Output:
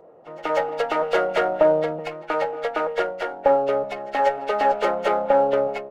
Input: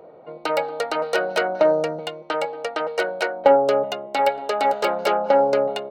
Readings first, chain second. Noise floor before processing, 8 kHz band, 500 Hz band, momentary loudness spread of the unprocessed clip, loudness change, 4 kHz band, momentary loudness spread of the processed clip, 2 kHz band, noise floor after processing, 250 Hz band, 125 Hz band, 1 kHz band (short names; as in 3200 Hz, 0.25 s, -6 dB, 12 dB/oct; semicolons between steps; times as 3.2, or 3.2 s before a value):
-45 dBFS, n/a, -0.5 dB, 10 LU, -1.0 dB, -6.0 dB, 8 LU, -2.0 dB, -43 dBFS, -1.0 dB, +0.5 dB, -0.5 dB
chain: nonlinear frequency compression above 1300 Hz 1.5:1; AGC gain up to 7 dB; reverse echo 0.187 s -20.5 dB; running maximum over 3 samples; gain -4.5 dB